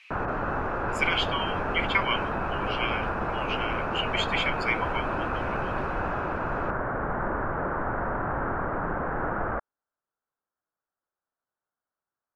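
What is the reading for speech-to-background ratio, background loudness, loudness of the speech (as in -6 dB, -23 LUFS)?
0.0 dB, -30.0 LUFS, -30.0 LUFS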